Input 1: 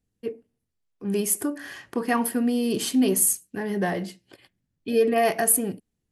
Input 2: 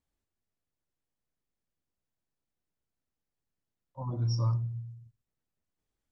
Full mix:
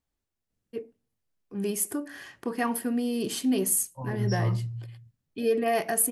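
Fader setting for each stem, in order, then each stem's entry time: −4.5, +1.0 decibels; 0.50, 0.00 seconds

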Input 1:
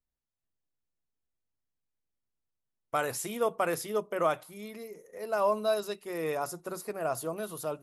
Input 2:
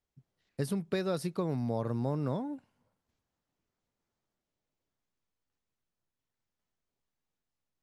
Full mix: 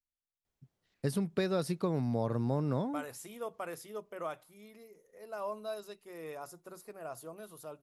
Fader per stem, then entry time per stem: −11.5, +0.5 decibels; 0.00, 0.45 seconds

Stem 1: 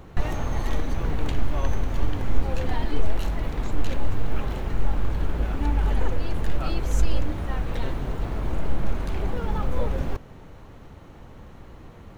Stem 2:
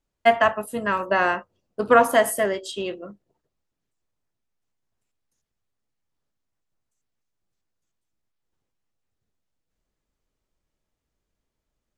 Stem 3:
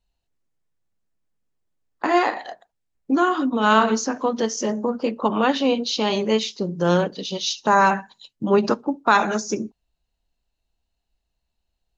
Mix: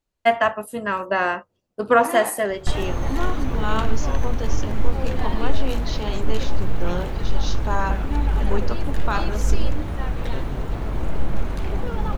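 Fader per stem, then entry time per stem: +2.0, −0.5, −9.5 decibels; 2.50, 0.00, 0.00 seconds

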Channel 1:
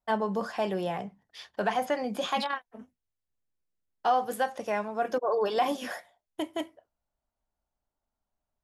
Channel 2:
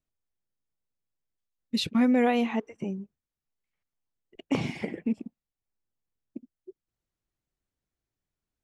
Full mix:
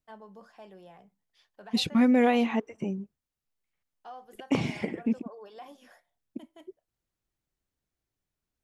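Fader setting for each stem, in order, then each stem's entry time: −20.0, +1.0 decibels; 0.00, 0.00 seconds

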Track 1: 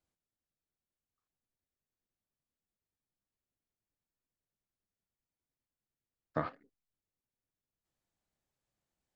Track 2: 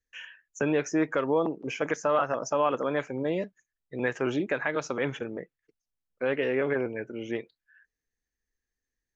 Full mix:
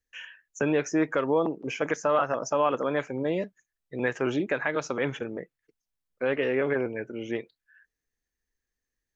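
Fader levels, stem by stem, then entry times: −18.0, +1.0 decibels; 0.00, 0.00 seconds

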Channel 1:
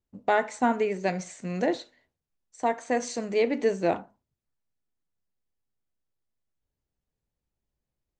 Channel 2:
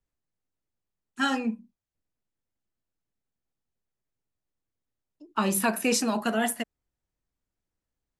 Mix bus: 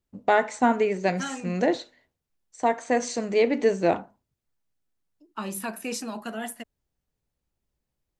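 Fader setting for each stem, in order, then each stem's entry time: +3.0, −7.5 decibels; 0.00, 0.00 seconds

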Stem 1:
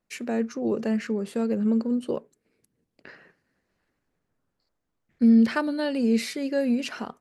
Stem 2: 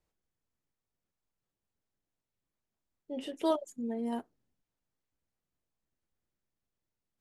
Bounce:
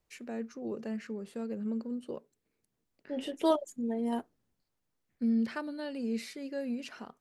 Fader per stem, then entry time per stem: −11.5, +2.5 decibels; 0.00, 0.00 seconds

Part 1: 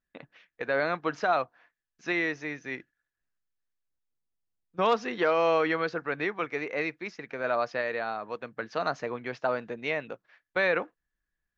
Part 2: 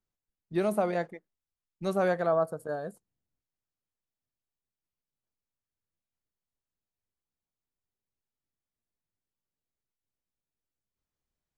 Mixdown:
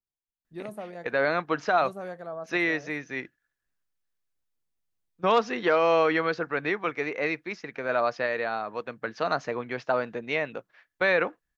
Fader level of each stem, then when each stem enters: +2.5, −11.0 decibels; 0.45, 0.00 seconds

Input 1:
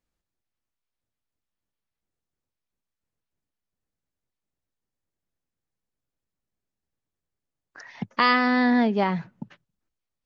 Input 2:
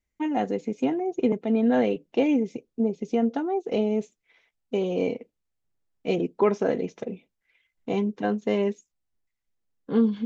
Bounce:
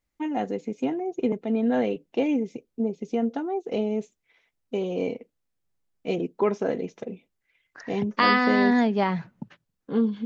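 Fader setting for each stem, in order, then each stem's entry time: −0.5, −2.0 decibels; 0.00, 0.00 seconds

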